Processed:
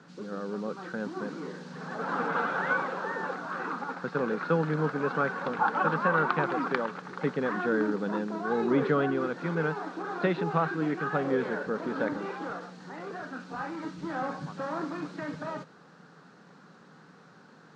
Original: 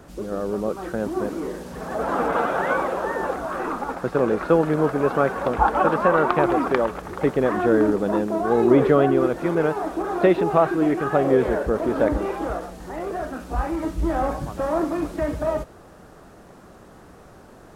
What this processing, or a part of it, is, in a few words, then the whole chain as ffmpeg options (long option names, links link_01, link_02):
television speaker: -af "highpass=frequency=160:width=0.5412,highpass=frequency=160:width=1.3066,equalizer=frequency=160:width_type=q:width=4:gain=8,equalizer=frequency=350:width_type=q:width=4:gain=-7,equalizer=frequency=640:width_type=q:width=4:gain=-10,equalizer=frequency=1500:width_type=q:width=4:gain=6,equalizer=frequency=4200:width_type=q:width=4:gain=6,lowpass=frequency=6500:width=0.5412,lowpass=frequency=6500:width=1.3066,volume=-6.5dB"